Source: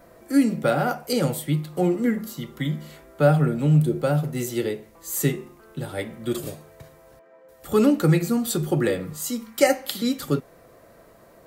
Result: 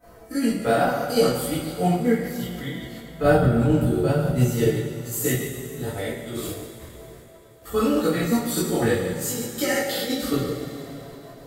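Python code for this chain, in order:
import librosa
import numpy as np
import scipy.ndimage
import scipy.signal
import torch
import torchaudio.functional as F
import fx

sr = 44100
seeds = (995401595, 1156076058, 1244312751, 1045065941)

y = fx.spec_trails(x, sr, decay_s=0.81)
y = fx.low_shelf(y, sr, hz=300.0, db=9.0, at=(3.22, 4.69))
y = fx.level_steps(y, sr, step_db=10)
y = fx.chorus_voices(y, sr, voices=6, hz=0.76, base_ms=17, depth_ms=1.4, mix_pct=45)
y = fx.rev_double_slope(y, sr, seeds[0], early_s=0.21, late_s=3.4, knee_db=-19, drr_db=-6.5)
y = y * librosa.db_to_amplitude(-2.0)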